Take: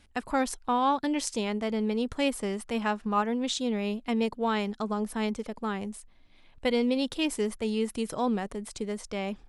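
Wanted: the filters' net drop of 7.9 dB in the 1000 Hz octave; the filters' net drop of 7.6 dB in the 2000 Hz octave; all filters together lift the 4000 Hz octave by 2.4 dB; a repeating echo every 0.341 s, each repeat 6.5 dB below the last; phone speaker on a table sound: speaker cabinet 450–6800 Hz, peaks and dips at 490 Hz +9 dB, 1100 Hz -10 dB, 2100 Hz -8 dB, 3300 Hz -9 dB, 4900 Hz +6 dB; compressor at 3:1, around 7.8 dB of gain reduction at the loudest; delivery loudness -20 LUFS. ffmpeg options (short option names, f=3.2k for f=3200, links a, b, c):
-af "equalizer=f=1k:t=o:g=-6.5,equalizer=f=2k:t=o:g=-5,equalizer=f=4k:t=o:g=8,acompressor=threshold=-33dB:ratio=3,highpass=f=450:w=0.5412,highpass=f=450:w=1.3066,equalizer=f=490:t=q:w=4:g=9,equalizer=f=1.1k:t=q:w=4:g=-10,equalizer=f=2.1k:t=q:w=4:g=-8,equalizer=f=3.3k:t=q:w=4:g=-9,equalizer=f=4.9k:t=q:w=4:g=6,lowpass=f=6.8k:w=0.5412,lowpass=f=6.8k:w=1.3066,aecho=1:1:341|682|1023|1364|1705|2046:0.473|0.222|0.105|0.0491|0.0231|0.0109,volume=17dB"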